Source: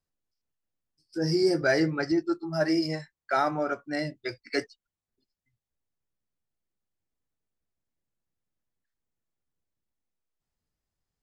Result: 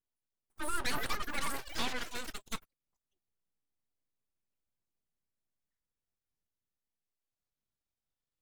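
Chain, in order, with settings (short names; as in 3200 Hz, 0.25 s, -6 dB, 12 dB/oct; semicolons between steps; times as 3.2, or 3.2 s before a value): speed glide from 200% -> 67%; echoes that change speed 0.493 s, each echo +6 st, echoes 3, each echo -6 dB; full-wave rectifier; gain -7 dB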